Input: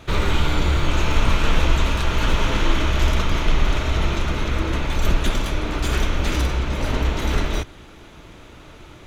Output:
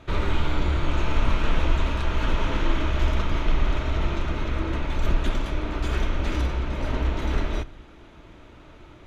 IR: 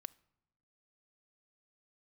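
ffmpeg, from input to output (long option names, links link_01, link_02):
-filter_complex "[0:a]lowpass=frequency=2600:poles=1[link_01];[1:a]atrim=start_sample=2205[link_02];[link_01][link_02]afir=irnorm=-1:irlink=0,volume=1dB"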